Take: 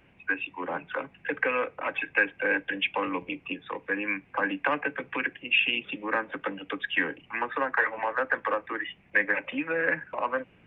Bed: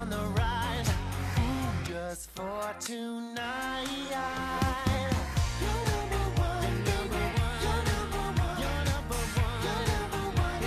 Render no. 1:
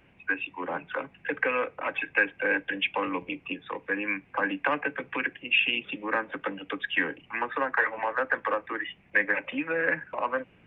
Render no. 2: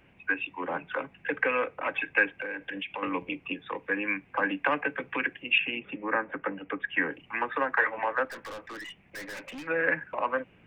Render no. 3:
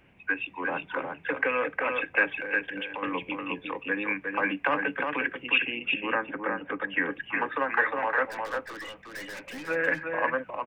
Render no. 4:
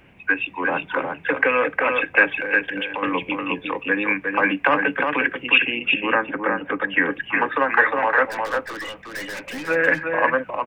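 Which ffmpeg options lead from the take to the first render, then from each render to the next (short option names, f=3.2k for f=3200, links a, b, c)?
-af anull
-filter_complex "[0:a]asettb=1/sr,asplit=3[a][b][c];[a]atrim=end=2.414[d];[b]atrim=start=2.41:end=3.03,asetpts=PTS-STARTPTS,afade=t=in:d=0.004:c=qsin,afade=t=out:st=0.616:d=0.004:c=qsin,acompressor=threshold=-31dB:ratio=12:attack=3.2:release=140:knee=1:detection=peak[e];[c]atrim=start=3.026[f];[d][e]acrossfade=d=0.004:c1=hsin:c2=qsin[g];[g][f]acrossfade=d=0.004:c1=qsin:c2=hsin,asettb=1/sr,asplit=3[h][i][j];[h]atrim=end=5.584[k];[i]atrim=start=5.58:end=7.11,asetpts=PTS-STARTPTS,afade=t=in:d=0.004:c=qsin,afade=t=out:st=1.526:d=0.004:c=qsin,lowpass=f=2.3k:w=0.5412,lowpass=f=2.3k:w=1.3066[l];[j]atrim=start=7.106[m];[k][l]acrossfade=d=0.004:c1=hsin:c2=qsin[n];[n][m]acrossfade=d=0.004:c1=qsin:c2=hsin,asettb=1/sr,asplit=3[o][p][q];[o]atrim=end=8.254[r];[p]atrim=start=8.25:end=9.67,asetpts=PTS-STARTPTS,afade=t=in:d=0.004:c=qsin,afade=t=out:st=1.416:d=0.004:c=qsin,aeval=exprs='(tanh(79.4*val(0)+0.15)-tanh(0.15))/79.4':c=same[s];[q]atrim=start=9.666[t];[r][s]acrossfade=d=0.004:c1=hsin:c2=qsin[u];[u][t]acrossfade=d=0.004:c1=qsin:c2=hsin"
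-af "aecho=1:1:358:0.596"
-af "volume=8dB"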